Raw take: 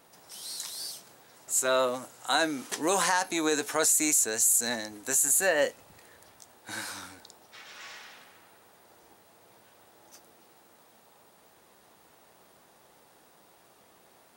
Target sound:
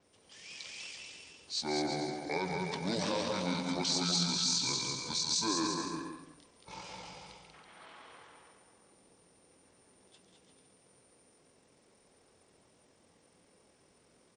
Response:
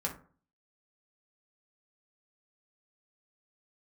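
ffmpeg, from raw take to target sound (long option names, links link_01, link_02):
-filter_complex "[0:a]aecho=1:1:200|340|438|506.6|554.6:0.631|0.398|0.251|0.158|0.1,asetrate=25476,aresample=44100,atempo=1.73107,adynamicequalizer=threshold=0.00398:dfrequency=9500:dqfactor=1.8:tfrequency=9500:tqfactor=1.8:attack=5:release=100:ratio=0.375:range=3.5:mode=boostabove:tftype=bell,asplit=2[link_01][link_02];[1:a]atrim=start_sample=2205,adelay=136[link_03];[link_02][link_03]afir=irnorm=-1:irlink=0,volume=-11.5dB[link_04];[link_01][link_04]amix=inputs=2:normalize=0,volume=-9dB"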